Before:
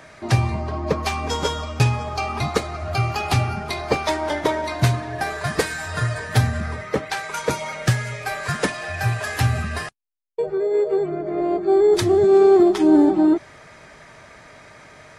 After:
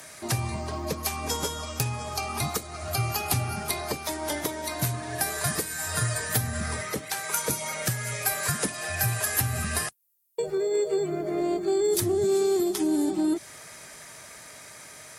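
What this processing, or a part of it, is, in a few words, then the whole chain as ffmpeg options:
FM broadcast chain: -filter_complex "[0:a]highpass=frequency=75:poles=1,dynaudnorm=framelen=610:gausssize=11:maxgain=7dB,acrossover=split=350|2200[link_01][link_02][link_03];[link_01]acompressor=threshold=-17dB:ratio=4[link_04];[link_02]acompressor=threshold=-27dB:ratio=4[link_05];[link_03]acompressor=threshold=-39dB:ratio=4[link_06];[link_04][link_05][link_06]amix=inputs=3:normalize=0,aemphasis=mode=production:type=50fm,alimiter=limit=-13dB:level=0:latency=1:release=396,asoftclip=type=hard:threshold=-14dB,lowpass=frequency=15000:width=0.5412,lowpass=frequency=15000:width=1.3066,aemphasis=mode=production:type=50fm,volume=-4dB"

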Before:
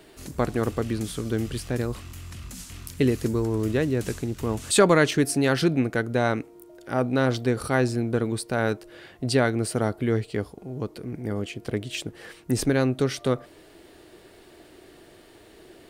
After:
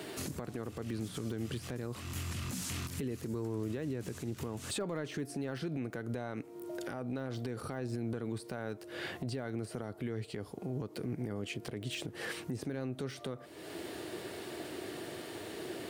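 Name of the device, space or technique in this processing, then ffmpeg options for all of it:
podcast mastering chain: -af "highpass=frequency=90:width=0.5412,highpass=frequency=90:width=1.3066,deesser=0.95,acompressor=threshold=-41dB:ratio=3,alimiter=level_in=12dB:limit=-24dB:level=0:latency=1:release=92,volume=-12dB,volume=8dB" -ar 48000 -c:a libmp3lame -b:a 112k

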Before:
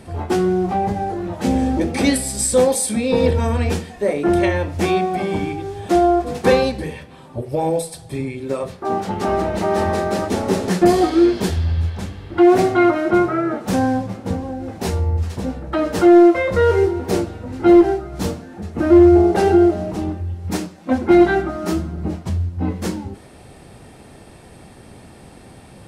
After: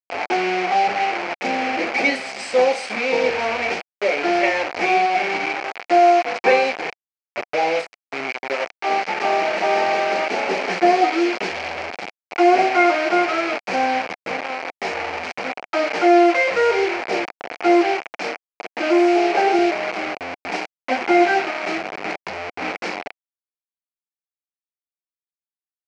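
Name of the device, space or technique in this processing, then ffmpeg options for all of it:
hand-held game console: -filter_complex "[0:a]acrusher=bits=3:mix=0:aa=0.000001,highpass=480,equalizer=frequency=730:width_type=q:width=4:gain=6,equalizer=frequency=1100:width_type=q:width=4:gain=-3,equalizer=frequency=2300:width_type=q:width=4:gain=10,equalizer=frequency=3600:width_type=q:width=4:gain=-9,lowpass=frequency=4800:width=0.5412,lowpass=frequency=4800:width=1.3066,asettb=1/sr,asplit=3[link_01][link_02][link_03];[link_01]atrim=end=18.094[link_04];[link_02]atrim=start=18.09:end=19.59,asetpts=PTS-STARTPTS,afade=type=in:duration=0.004:curve=qsin,afade=type=out:start_time=1.496:duration=0.004:curve=qsin,highpass=200[link_05];[link_03]atrim=start=19.586[link_06];[link_04][link_05]acrossfade=duration=0.004:curve1=hsin:curve2=qsin[link_07];[link_07][link_06]acrossfade=duration=0.004:curve1=qsin:curve2=hsin"

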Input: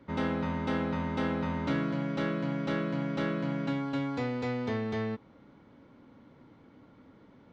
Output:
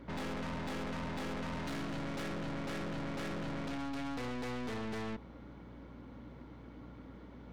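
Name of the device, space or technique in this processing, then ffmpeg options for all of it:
valve amplifier with mains hum: -filter_complex "[0:a]asettb=1/sr,asplit=3[link_01][link_02][link_03];[link_01]atrim=end=1.524[link_04];[link_02]atrim=start=1.52:end=2.23,asetpts=PTS-STARTPTS,afade=type=in:duration=0.004:curve=qsin,afade=type=out:start_time=0.706:duration=0.004:curve=qsin,highshelf=frequency=3400:gain=5[link_05];[link_03]atrim=start=2.226[link_06];[link_04][link_05]acrossfade=duration=0.004:curve1=hsin:curve2=qsin[link_07];[link_07][link_06]acrossfade=duration=0.004:curve1=qsin:curve2=hsin,aeval=exprs='(tanh(158*val(0)+0.45)-tanh(0.45))/158':channel_layout=same,aeval=exprs='val(0)+0.00112*(sin(2*PI*60*n/s)+sin(2*PI*2*60*n/s)/2+sin(2*PI*3*60*n/s)/3+sin(2*PI*4*60*n/s)/4+sin(2*PI*5*60*n/s)/5)':channel_layout=same,volume=5.5dB"

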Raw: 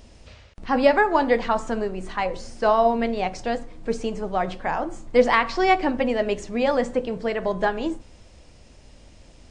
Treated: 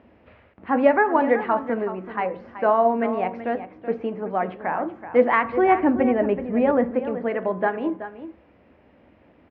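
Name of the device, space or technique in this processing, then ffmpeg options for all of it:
bass cabinet: -filter_complex "[0:a]asettb=1/sr,asplit=3[link_01][link_02][link_03];[link_01]atrim=end=5.444[link_04];[link_02]atrim=start=5.44:end=6.91,asetpts=PTS-STARTPTS,afade=type=in:duration=0.004:curve=qsin,afade=type=out:start_time=1.466:duration=0.004:curve=qsin,aemphasis=mode=reproduction:type=bsi[link_05];[link_03]atrim=start=6.906[link_06];[link_04][link_05]acrossfade=duration=0.004:curve1=hsin:curve2=qsin[link_07];[link_07][link_06]acrossfade=duration=0.004:curve1=qsin:curve2=hsin,highpass=frequency=86:width=0.5412,highpass=frequency=86:width=1.3066,equalizer=frequency=94:width_type=q:width=4:gain=-8,equalizer=frequency=140:width_type=q:width=4:gain=-10,equalizer=frequency=290:width_type=q:width=4:gain=3,lowpass=frequency=2200:width=0.5412,lowpass=frequency=2200:width=1.3066,aecho=1:1:378:0.251"

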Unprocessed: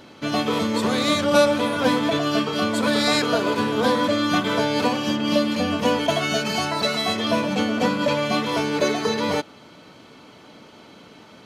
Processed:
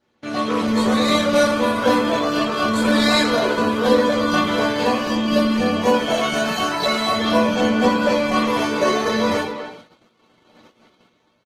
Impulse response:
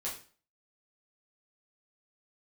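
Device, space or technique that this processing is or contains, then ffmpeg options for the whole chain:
speakerphone in a meeting room: -filter_complex "[1:a]atrim=start_sample=2205[link_01];[0:a][link_01]afir=irnorm=-1:irlink=0,asplit=2[link_02][link_03];[link_03]adelay=250,highpass=300,lowpass=3400,asoftclip=type=hard:threshold=-12.5dB,volume=-9dB[link_04];[link_02][link_04]amix=inputs=2:normalize=0,dynaudnorm=framelen=120:gausssize=9:maxgain=4dB,agate=range=-19dB:threshold=-38dB:ratio=16:detection=peak,volume=-2dB" -ar 48000 -c:a libopus -b:a 16k

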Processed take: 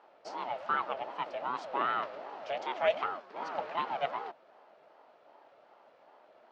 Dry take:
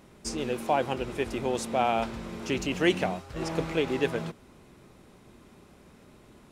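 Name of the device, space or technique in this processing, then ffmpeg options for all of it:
voice changer toy: -af "aeval=exprs='val(0)*sin(2*PI*460*n/s+460*0.4/2.6*sin(2*PI*2.6*n/s))':channel_layout=same,highpass=420,equalizer=frequency=620:width_type=q:width=4:gain=8,equalizer=frequency=880:width_type=q:width=4:gain=4,equalizer=frequency=1300:width_type=q:width=4:gain=6,equalizer=frequency=3700:width_type=q:width=4:gain=-3,lowpass=frequency=4400:width=0.5412,lowpass=frequency=4400:width=1.3066,volume=-5dB"

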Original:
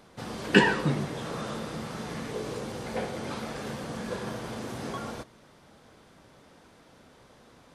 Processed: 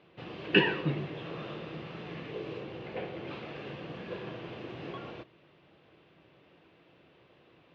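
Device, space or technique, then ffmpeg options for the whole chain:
guitar cabinet: -filter_complex "[0:a]asettb=1/sr,asplit=3[link_01][link_02][link_03];[link_01]atrim=end=2.634[link_04];[link_02]atrim=start=2.63:end=3.28,asetpts=PTS-STARTPTS,afade=type=in:duration=0.004:curve=qsin,afade=type=out:start_time=0.646:duration=0.004:curve=qsin,highshelf=frequency=4700:gain=-5[link_05];[link_03]atrim=start=3.276[link_06];[link_04][link_05]acrossfade=duration=0.004:curve1=hsin:curve2=qsin[link_07];[link_07][link_06]acrossfade=duration=0.004:curve1=qsin:curve2=hsin,highpass=86,equalizer=frequency=160:width_type=q:width=4:gain=4,equalizer=frequency=230:width_type=q:width=4:gain=-9,equalizer=frequency=340:width_type=q:width=4:gain=7,equalizer=frequency=880:width_type=q:width=4:gain=-4,equalizer=frequency=1400:width_type=q:width=4:gain=-4,equalizer=frequency=2700:width_type=q:width=4:gain=9,lowpass=frequency=3600:width=0.5412,lowpass=frequency=3600:width=1.3066,volume=-5.5dB"

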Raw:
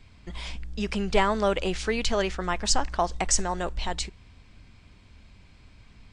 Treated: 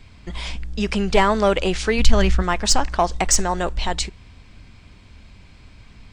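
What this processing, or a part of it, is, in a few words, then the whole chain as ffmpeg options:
parallel distortion: -filter_complex "[0:a]asplit=3[link_01][link_02][link_03];[link_01]afade=type=out:start_time=1.98:duration=0.02[link_04];[link_02]asubboost=boost=6.5:cutoff=200,afade=type=in:start_time=1.98:duration=0.02,afade=type=out:start_time=2.41:duration=0.02[link_05];[link_03]afade=type=in:start_time=2.41:duration=0.02[link_06];[link_04][link_05][link_06]amix=inputs=3:normalize=0,asplit=2[link_07][link_08];[link_08]asoftclip=type=hard:threshold=-17.5dB,volume=-4dB[link_09];[link_07][link_09]amix=inputs=2:normalize=0,volume=2.5dB"

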